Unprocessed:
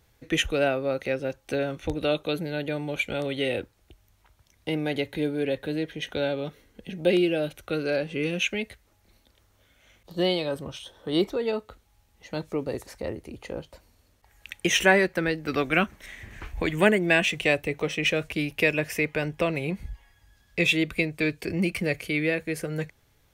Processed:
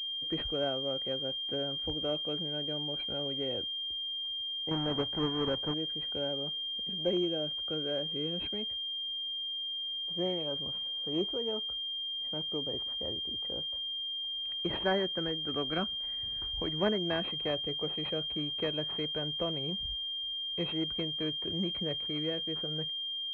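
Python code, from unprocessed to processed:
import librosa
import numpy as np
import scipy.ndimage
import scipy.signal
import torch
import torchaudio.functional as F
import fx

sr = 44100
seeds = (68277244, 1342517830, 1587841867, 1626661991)

y = fx.halfwave_hold(x, sr, at=(4.71, 5.74))
y = fx.pwm(y, sr, carrier_hz=3200.0)
y = y * 10.0 ** (-9.0 / 20.0)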